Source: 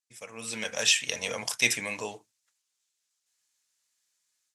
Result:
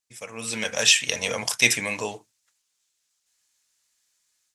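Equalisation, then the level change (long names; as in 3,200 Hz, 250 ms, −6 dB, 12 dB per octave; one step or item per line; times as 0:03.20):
low-shelf EQ 90 Hz +6 dB
+5.5 dB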